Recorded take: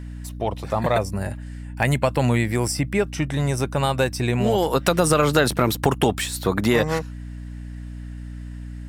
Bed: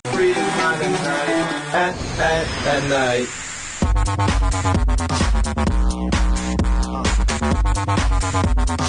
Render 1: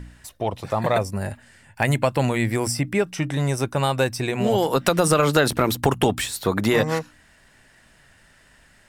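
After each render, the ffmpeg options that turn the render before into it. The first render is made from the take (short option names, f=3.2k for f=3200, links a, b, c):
-af "bandreject=f=60:t=h:w=4,bandreject=f=120:t=h:w=4,bandreject=f=180:t=h:w=4,bandreject=f=240:t=h:w=4,bandreject=f=300:t=h:w=4"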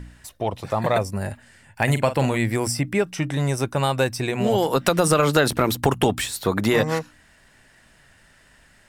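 -filter_complex "[0:a]asettb=1/sr,asplit=3[a][b][c];[a]atrim=end=1.834[d];[b]atrim=start=1.83:end=2.37,asetpts=PTS-STARTPTS,afade=t=in:d=0.004:c=qsin,afade=t=out:st=0.536:d=0.004:c=qsin,asplit=2[e][f];[f]adelay=44,volume=-11dB[g];[e][g]amix=inputs=2:normalize=0,atrim=end_sample=23814[h];[c]atrim=start=2.366[i];[d][h]acrossfade=d=0.004:c1=hsin:c2=qsin[j];[j][i]acrossfade=d=0.004:c1=qsin:c2=hsin"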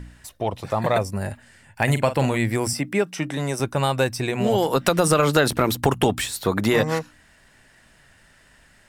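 -filter_complex "[0:a]asettb=1/sr,asplit=3[a][b][c];[a]atrim=end=2.734[d];[b]atrim=start=2.73:end=3.6,asetpts=PTS-STARTPTS,afade=t=in:d=0.004:c=qsin,afade=t=out:st=0.866:d=0.004:c=qsin,highpass=f=160:w=0.5412,highpass=f=160:w=1.3066[e];[c]atrim=start=3.596[f];[d][e]acrossfade=d=0.004:c1=hsin:c2=qsin[g];[g][f]acrossfade=d=0.004:c1=qsin:c2=hsin"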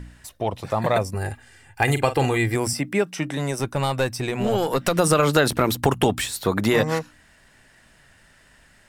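-filter_complex "[0:a]asettb=1/sr,asplit=3[a][b][c];[a]atrim=end=1.144[d];[b]atrim=start=1.14:end=2.55,asetpts=PTS-STARTPTS,afade=t=in:d=0.004:c=qsin,afade=t=out:st=1.406:d=0.004:c=qsin,aecho=1:1:2.5:0.65,atrim=end_sample=62181[e];[c]atrim=start=2.546[f];[d][e]acrossfade=d=0.004:c1=hsin:c2=qsin[g];[g][f]acrossfade=d=0.004:c1=qsin:c2=hsin,asettb=1/sr,asplit=3[h][i][j];[h]atrim=end=3.514[k];[i]atrim=start=3.51:end=4.96,asetpts=PTS-STARTPTS,afade=t=in:d=0.004:c=qsin,afade=t=out:st=1.446:d=0.004:c=qsin,aeval=exprs='(tanh(3.55*val(0)+0.3)-tanh(0.3))/3.55':c=same[l];[j]atrim=start=4.956[m];[k][l]acrossfade=d=0.004:c1=hsin:c2=qsin[n];[n][m]acrossfade=d=0.004:c1=qsin:c2=hsin"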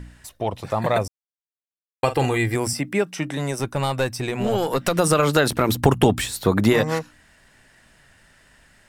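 -filter_complex "[0:a]asettb=1/sr,asplit=3[a][b][c];[a]atrim=end=5.694[d];[b]atrim=start=5.69:end=6.73,asetpts=PTS-STARTPTS,afade=t=in:d=0.004:c=qsin,afade=t=out:st=1.036:d=0.004:c=qsin,lowshelf=f=450:g=5.5[e];[c]atrim=start=6.726[f];[d][e]acrossfade=d=0.004:c1=hsin:c2=qsin[g];[g][f]acrossfade=d=0.004:c1=qsin:c2=hsin,asplit=3[h][i][j];[h]atrim=end=1.08,asetpts=PTS-STARTPTS,afade=t=out:st=1.076:d=0.004:c=hsin[k];[i]atrim=start=1.08:end=2.03,asetpts=PTS-STARTPTS,volume=0[l];[j]atrim=start=2.03,asetpts=PTS-STARTPTS,afade=t=in:d=0.004:c=hsin[m];[k][l][m]concat=n=3:v=0:a=1"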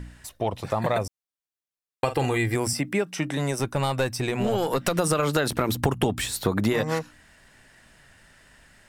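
-af "acompressor=threshold=-21dB:ratio=3"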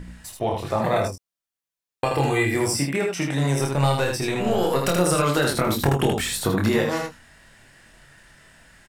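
-filter_complex "[0:a]asplit=2[a][b];[b]adelay=22,volume=-7dB[c];[a][c]amix=inputs=2:normalize=0,asplit=2[d][e];[e]aecho=0:1:28|79:0.562|0.631[f];[d][f]amix=inputs=2:normalize=0"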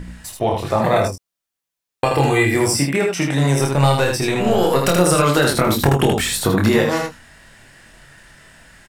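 -af "volume=5.5dB,alimiter=limit=-3dB:level=0:latency=1"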